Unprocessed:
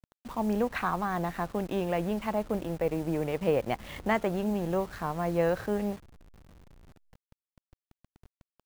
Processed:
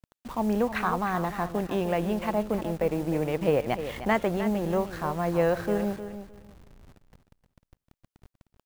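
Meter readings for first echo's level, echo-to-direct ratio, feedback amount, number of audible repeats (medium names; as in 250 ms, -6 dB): -11.0 dB, -11.0 dB, 19%, 2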